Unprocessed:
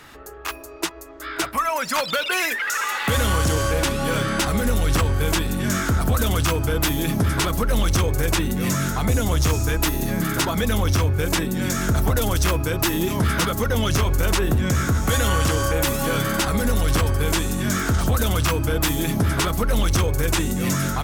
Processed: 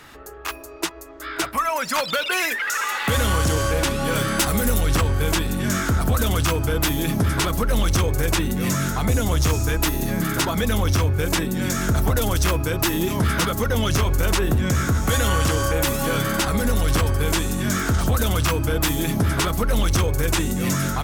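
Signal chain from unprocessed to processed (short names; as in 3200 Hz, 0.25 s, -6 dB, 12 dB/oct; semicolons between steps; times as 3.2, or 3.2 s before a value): 4.15–4.81 high shelf 9100 Hz +11.5 dB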